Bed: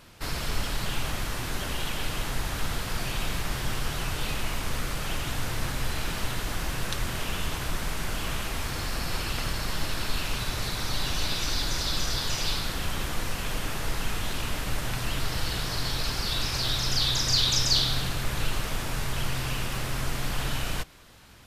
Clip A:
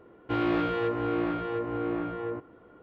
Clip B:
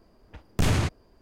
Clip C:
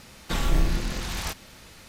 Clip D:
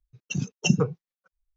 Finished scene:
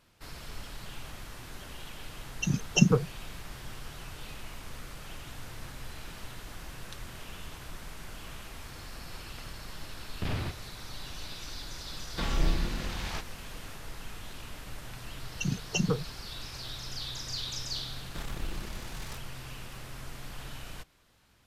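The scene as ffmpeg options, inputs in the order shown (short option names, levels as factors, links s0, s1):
-filter_complex "[4:a]asplit=2[s0][s1];[3:a]asplit=2[s2][s3];[0:a]volume=0.224[s4];[2:a]aresample=11025,aresample=44100[s5];[s2]acrossover=split=5600[s6][s7];[s7]acompressor=threshold=0.00282:ratio=4:attack=1:release=60[s8];[s6][s8]amix=inputs=2:normalize=0[s9];[s1]alimiter=level_in=5.31:limit=0.891:release=50:level=0:latency=1[s10];[s3]aeval=exprs='(tanh(15.8*val(0)+0.7)-tanh(0.7))/15.8':c=same[s11];[s0]atrim=end=1.56,asetpts=PTS-STARTPTS,afade=t=in:d=0.004:c=hsin,afade=t=out:st=1.556:d=0.004:c=hsin,adelay=2120[s12];[s5]atrim=end=1.21,asetpts=PTS-STARTPTS,volume=0.316,afade=t=in:d=0.004:c=hsin,afade=t=out:st=1.206:d=0.004:c=hsin,adelay=9630[s13];[s9]atrim=end=1.88,asetpts=PTS-STARTPTS,volume=0.596,afade=t=in:d=0.004:c=hsin,afade=t=out:st=1.876:d=0.004:c=hsin,adelay=11880[s14];[s10]atrim=end=1.56,asetpts=PTS-STARTPTS,volume=0.141,afade=t=in:d=0.004:c=hsin,afade=t=out:st=1.556:d=0.004:c=hsin,adelay=15100[s15];[s11]atrim=end=1.88,asetpts=PTS-STARTPTS,volume=0.335,afade=t=in:d=0.004:c=hsin,afade=t=out:st=1.876:d=0.004:c=hsin,adelay=17850[s16];[s4][s12][s13][s14][s15][s16]amix=inputs=6:normalize=0"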